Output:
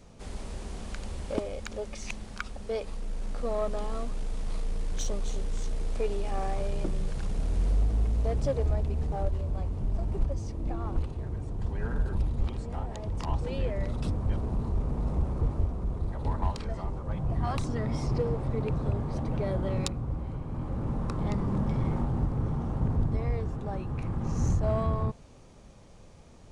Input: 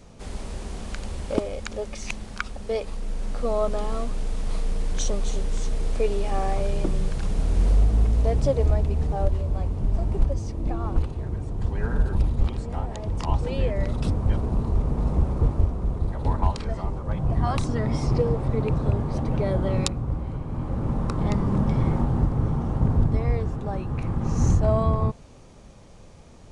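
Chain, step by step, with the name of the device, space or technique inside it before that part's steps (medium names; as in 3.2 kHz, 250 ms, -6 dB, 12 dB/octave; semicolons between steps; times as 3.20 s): parallel distortion (in parallel at -6 dB: hard clipper -25 dBFS, distortion -6 dB); on the sum: trim -8 dB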